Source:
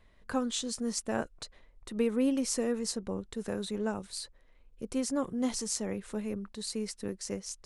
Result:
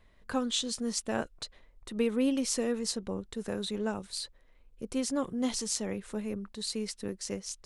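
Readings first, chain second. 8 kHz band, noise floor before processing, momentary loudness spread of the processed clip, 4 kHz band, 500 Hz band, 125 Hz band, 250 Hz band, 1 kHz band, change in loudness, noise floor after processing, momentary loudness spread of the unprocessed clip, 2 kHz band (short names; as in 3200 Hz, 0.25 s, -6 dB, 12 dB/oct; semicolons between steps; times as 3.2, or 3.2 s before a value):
+1.0 dB, -62 dBFS, 9 LU, +4.0 dB, 0.0 dB, 0.0 dB, 0.0 dB, +0.5 dB, +0.5 dB, -62 dBFS, 11 LU, +1.5 dB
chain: dynamic EQ 3400 Hz, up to +6 dB, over -53 dBFS, Q 1.4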